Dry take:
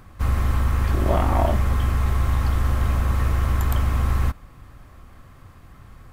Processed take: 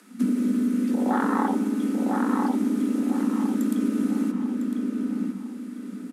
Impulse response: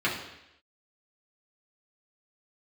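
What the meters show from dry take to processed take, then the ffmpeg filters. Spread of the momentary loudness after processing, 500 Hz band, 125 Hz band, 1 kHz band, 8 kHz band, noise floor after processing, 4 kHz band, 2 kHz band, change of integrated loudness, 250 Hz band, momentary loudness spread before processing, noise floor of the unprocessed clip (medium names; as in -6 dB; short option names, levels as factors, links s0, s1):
7 LU, -2.5 dB, under -15 dB, -2.0 dB, -2.5 dB, -38 dBFS, no reading, -4.0 dB, -2.5 dB, +12.0 dB, 3 LU, -47 dBFS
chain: -filter_complex "[0:a]lowpass=f=11000:w=0.5412,lowpass=f=11000:w=1.3066,afwtdn=0.0794,lowshelf=f=120:g=4.5,acompressor=threshold=0.0562:ratio=5,crystalizer=i=8.5:c=0,afreqshift=180,asplit=2[s0][s1];[s1]adelay=1003,lowpass=f=2900:p=1,volume=0.708,asplit=2[s2][s3];[s3]adelay=1003,lowpass=f=2900:p=1,volume=0.36,asplit=2[s4][s5];[s5]adelay=1003,lowpass=f=2900:p=1,volume=0.36,asplit=2[s6][s7];[s7]adelay=1003,lowpass=f=2900:p=1,volume=0.36,asplit=2[s8][s9];[s9]adelay=1003,lowpass=f=2900:p=1,volume=0.36[s10];[s0][s2][s4][s6][s8][s10]amix=inputs=6:normalize=0,asplit=2[s11][s12];[1:a]atrim=start_sample=2205,asetrate=24696,aresample=44100[s13];[s12][s13]afir=irnorm=-1:irlink=0,volume=0.0376[s14];[s11][s14]amix=inputs=2:normalize=0,volume=1.68"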